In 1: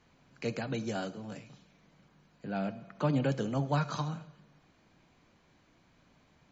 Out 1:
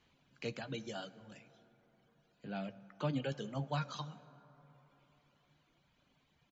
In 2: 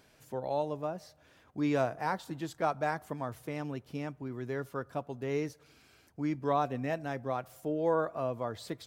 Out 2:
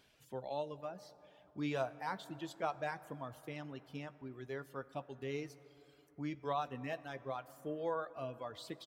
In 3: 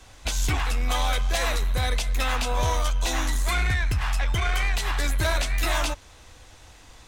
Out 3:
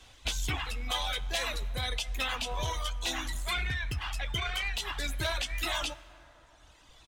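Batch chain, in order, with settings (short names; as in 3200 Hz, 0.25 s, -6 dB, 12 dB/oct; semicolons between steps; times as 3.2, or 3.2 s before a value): reverb removal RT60 1.8 s; bell 3200 Hz +8 dB 0.77 oct; doubler 15 ms -14 dB; plate-style reverb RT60 4.2 s, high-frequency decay 0.35×, DRR 16 dB; gain -7 dB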